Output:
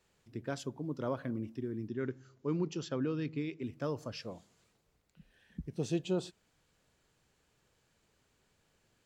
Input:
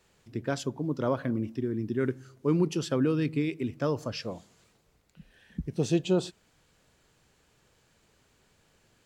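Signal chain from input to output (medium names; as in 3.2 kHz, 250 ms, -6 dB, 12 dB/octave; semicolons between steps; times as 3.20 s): 1.88–3.63 s: Chebyshev low-pass 7.4 kHz, order 10; trim -7.5 dB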